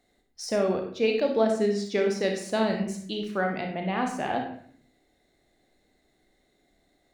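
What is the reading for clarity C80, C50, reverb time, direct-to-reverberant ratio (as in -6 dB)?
8.5 dB, 5.0 dB, 0.55 s, 2.0 dB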